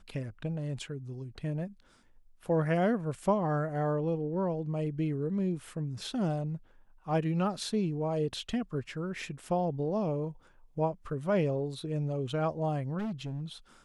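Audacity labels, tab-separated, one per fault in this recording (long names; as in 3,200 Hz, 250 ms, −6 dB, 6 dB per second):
12.980000	13.420000	clipping −32 dBFS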